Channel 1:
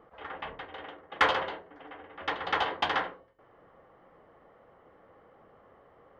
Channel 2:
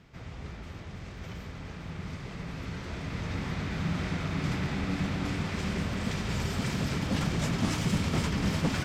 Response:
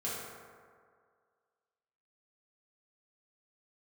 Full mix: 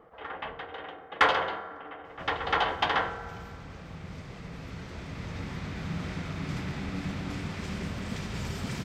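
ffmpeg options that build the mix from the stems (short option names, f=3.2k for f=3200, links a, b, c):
-filter_complex "[0:a]volume=0.5dB,asplit=2[a][b];[b]volume=-11.5dB[c];[1:a]adelay=2050,volume=-3.5dB[d];[2:a]atrim=start_sample=2205[e];[c][e]afir=irnorm=-1:irlink=0[f];[a][d][f]amix=inputs=3:normalize=0"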